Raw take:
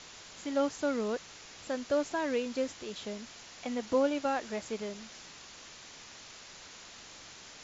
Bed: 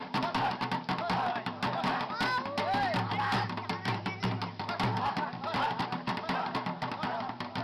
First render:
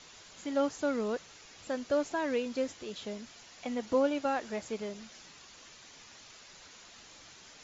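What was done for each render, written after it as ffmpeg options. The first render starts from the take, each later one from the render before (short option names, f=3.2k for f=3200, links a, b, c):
-af "afftdn=nr=6:nf=-51"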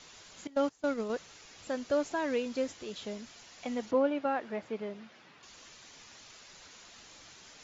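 -filter_complex "[0:a]asettb=1/sr,asplit=3[a][b][c];[a]atrim=end=0.474[d];[b]atrim=start=0.47:end=1.1,asetpts=PTS-STARTPTS,afade=t=in:d=0.004:c=qsin,afade=t=out:st=0.626:d=0.004:c=qsin,agate=range=-19dB:threshold=-33dB:ratio=16:release=100:detection=peak[e];[c]atrim=start=1.096[f];[d][e]acrossfade=d=0.004:c1=hsin:c2=qsin[g];[g][f]acrossfade=d=0.004:c1=qsin:c2=hsin,asettb=1/sr,asplit=3[h][i][j];[h]atrim=end=3.914[k];[i]atrim=start=3.91:end=5.43,asetpts=PTS-STARTPTS,afade=t=in:d=0.004:c=qsin,afade=t=out:st=1.516:d=0.004:c=qsin,highpass=120,lowpass=2.6k[l];[j]atrim=start=5.426[m];[k][l]acrossfade=d=0.004:c1=hsin:c2=qsin[n];[n][m]acrossfade=d=0.004:c1=qsin:c2=hsin"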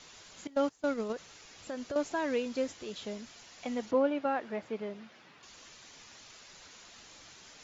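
-filter_complex "[0:a]asettb=1/sr,asplit=3[a][b][c];[a]atrim=end=1.124[d];[b]atrim=start=1.12:end=1.96,asetpts=PTS-STARTPTS,afade=t=in:d=0.004:c=qsin,afade=t=out:st=0.836:d=0.004:c=qsin,acompressor=threshold=-34dB:ratio=6:attack=3.2:release=140:knee=1:detection=peak[e];[c]atrim=start=1.956[f];[d][e]acrossfade=d=0.004:c1=hsin:c2=qsin[g];[g][f]acrossfade=d=0.004:c1=qsin:c2=hsin"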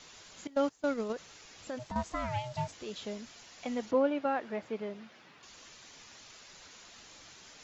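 -filter_complex "[0:a]asplit=3[a][b][c];[a]afade=t=out:st=1.78:d=0.02[d];[b]aeval=exprs='val(0)*sin(2*PI*370*n/s)':c=same,afade=t=in:st=1.78:d=0.02,afade=t=out:st=2.71:d=0.02[e];[c]afade=t=in:st=2.71:d=0.02[f];[d][e][f]amix=inputs=3:normalize=0"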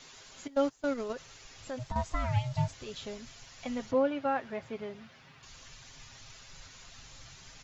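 -af "aecho=1:1:7.5:0.45,asubboost=boost=8:cutoff=110"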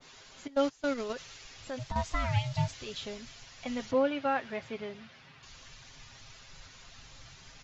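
-af "lowpass=6.2k,adynamicequalizer=threshold=0.00398:dfrequency=1700:dqfactor=0.7:tfrequency=1700:tqfactor=0.7:attack=5:release=100:ratio=0.375:range=3.5:mode=boostabove:tftype=highshelf"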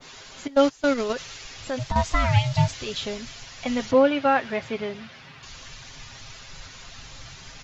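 -af "volume=9.5dB"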